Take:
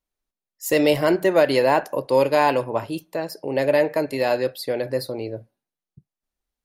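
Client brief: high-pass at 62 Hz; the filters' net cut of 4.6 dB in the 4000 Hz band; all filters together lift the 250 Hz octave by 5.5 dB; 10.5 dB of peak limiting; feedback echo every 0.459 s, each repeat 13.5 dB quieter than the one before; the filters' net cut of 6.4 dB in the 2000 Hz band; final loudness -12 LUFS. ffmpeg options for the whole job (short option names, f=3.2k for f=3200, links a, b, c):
-af "highpass=62,equalizer=f=250:t=o:g=7.5,equalizer=f=2k:t=o:g=-7.5,equalizer=f=4k:t=o:g=-3.5,alimiter=limit=-15dB:level=0:latency=1,aecho=1:1:459|918:0.211|0.0444,volume=13dB"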